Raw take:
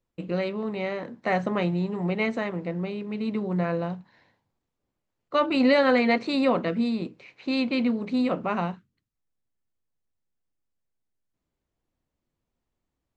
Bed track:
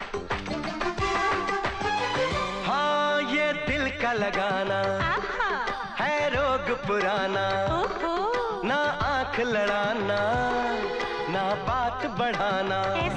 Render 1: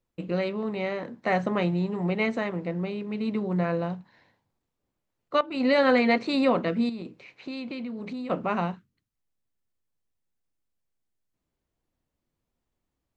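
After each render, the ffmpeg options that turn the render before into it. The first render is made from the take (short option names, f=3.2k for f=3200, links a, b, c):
-filter_complex "[0:a]asettb=1/sr,asplit=3[a][b][c];[a]atrim=end=6.894[d];[b]atrim=start=6.89:end=8.3,asetpts=PTS-STARTPTS,afade=t=in:d=0.004:c=qsin,afade=t=out:st=1.406:d=0.004:c=qsin,acompressor=threshold=-32dB:ratio=6:attack=3.2:release=140:knee=1:detection=peak[e];[c]atrim=start=8.296[f];[d][e]acrossfade=d=0.004:c1=hsin:c2=qsin[g];[g][f]acrossfade=d=0.004:c1=qsin:c2=hsin,asplit=2[h][i];[h]atrim=end=5.41,asetpts=PTS-STARTPTS,afade=t=out:st=5.406:d=0.004:c=hsin:silence=0.125893[j];[i]atrim=start=5.41,asetpts=PTS-STARTPTS,afade=t=in:d=0.42:silence=0.125893[k];[j][k]concat=n=2:v=0:a=1"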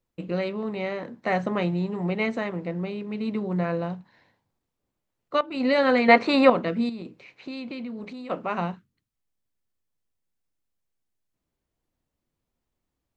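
-filter_complex "[0:a]asettb=1/sr,asplit=3[a][b][c];[a]atrim=end=6.084[d];[b]atrim=start=6.08:end=6.5,asetpts=PTS-STARTPTS,afade=t=in:d=0.004:c=qsin,afade=t=out:st=0.416:d=0.004:c=qsin,equalizer=f=1.1k:w=0.42:g=11.5[e];[c]atrim=start=6.496[f];[d][e]acrossfade=d=0.004:c1=hsin:c2=qsin[g];[g][f]acrossfade=d=0.004:c1=qsin:c2=hsin,asettb=1/sr,asplit=3[h][i][j];[h]atrim=end=8.044[k];[i]atrim=start=8.04:end=8.58,asetpts=PTS-STARTPTS,afade=t=in:d=0.004:c=qsin,afade=t=out:st=0.536:d=0.004:c=qsin,equalizer=f=61:w=0.36:g=-12[l];[j]atrim=start=8.576[m];[k][l]acrossfade=d=0.004:c1=hsin:c2=qsin[n];[n][m]acrossfade=d=0.004:c1=qsin:c2=hsin"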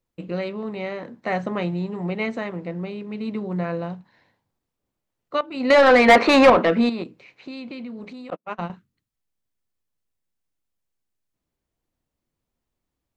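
-filter_complex "[0:a]asettb=1/sr,asplit=3[a][b][c];[a]atrim=end=5.704[d];[b]atrim=start=5.7:end=7.04,asetpts=PTS-STARTPTS,afade=t=in:d=0.004:c=qsin,afade=t=out:st=1.336:d=0.004:c=qsin,asplit=2[e][f];[f]highpass=f=720:p=1,volume=22dB,asoftclip=type=tanh:threshold=-3.5dB[g];[e][g]amix=inputs=2:normalize=0,lowpass=f=2k:p=1,volume=-6dB[h];[c]atrim=start=7.036[i];[d][h]acrossfade=d=0.004:c1=hsin:c2=qsin[j];[j][i]acrossfade=d=0.004:c1=qsin:c2=hsin,asettb=1/sr,asplit=3[k][l][m];[k]atrim=end=8.304[n];[l]atrim=start=8.3:end=8.7,asetpts=PTS-STARTPTS,afade=t=in:d=0.004:c=qsin,afade=t=out:st=0.396:d=0.004:c=qsin,agate=range=-47dB:threshold=-28dB:ratio=16:release=100:detection=peak[o];[m]atrim=start=8.696[p];[n][o]acrossfade=d=0.004:c1=hsin:c2=qsin[q];[q][p]acrossfade=d=0.004:c1=qsin:c2=hsin"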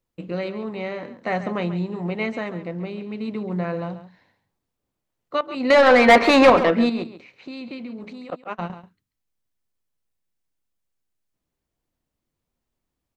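-af "aecho=1:1:137:0.237"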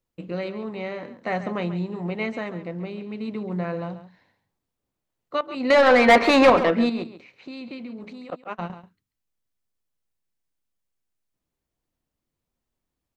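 -af "volume=-2dB"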